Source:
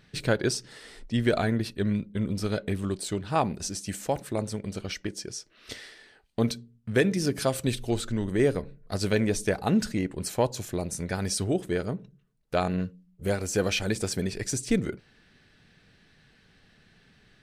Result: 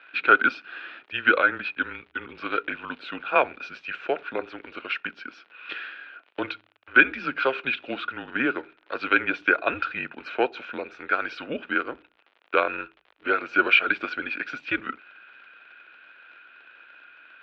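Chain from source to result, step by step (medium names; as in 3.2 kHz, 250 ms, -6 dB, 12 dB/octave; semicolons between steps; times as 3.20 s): small resonant body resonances 1.6/2.6 kHz, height 18 dB, ringing for 20 ms; crackle 74 per s -38 dBFS; mistuned SSB -130 Hz 500–3500 Hz; trim +3 dB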